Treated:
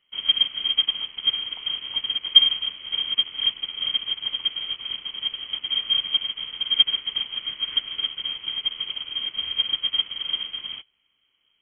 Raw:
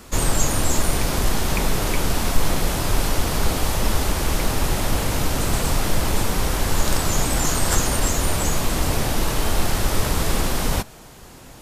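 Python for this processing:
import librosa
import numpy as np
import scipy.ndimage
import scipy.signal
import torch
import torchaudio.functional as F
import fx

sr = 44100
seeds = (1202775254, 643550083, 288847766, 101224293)

p1 = fx.octave_divider(x, sr, octaves=1, level_db=-4.0)
p2 = p1 + 0.35 * np.pad(p1, (int(1.0 * sr / 1000.0), 0))[:len(p1)]
p3 = np.clip(p2, -10.0 ** (-13.5 / 20.0), 10.0 ** (-13.5 / 20.0))
p4 = p2 + F.gain(torch.from_numpy(p3), -9.5).numpy()
p5 = fx.freq_invert(p4, sr, carrier_hz=3200)
p6 = fx.upward_expand(p5, sr, threshold_db=-21.0, expansion=2.5)
y = F.gain(torch.from_numpy(p6), -4.5).numpy()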